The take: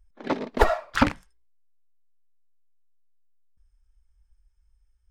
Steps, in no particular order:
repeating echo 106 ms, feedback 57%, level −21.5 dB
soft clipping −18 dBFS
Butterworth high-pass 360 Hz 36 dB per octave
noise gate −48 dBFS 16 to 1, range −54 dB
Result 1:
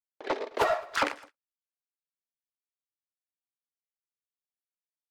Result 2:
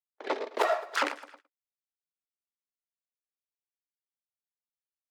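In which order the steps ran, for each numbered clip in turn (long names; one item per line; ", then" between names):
Butterworth high-pass, then soft clipping, then repeating echo, then noise gate
repeating echo, then noise gate, then soft clipping, then Butterworth high-pass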